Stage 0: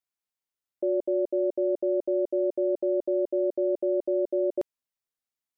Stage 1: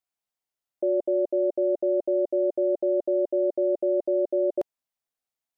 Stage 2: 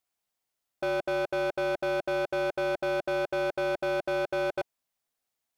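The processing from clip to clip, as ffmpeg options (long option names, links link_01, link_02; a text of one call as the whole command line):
ffmpeg -i in.wav -af "equalizer=frequency=710:width_type=o:width=0.57:gain=6.5" out.wav
ffmpeg -i in.wav -af "asoftclip=type=hard:threshold=-32dB,volume=5dB" out.wav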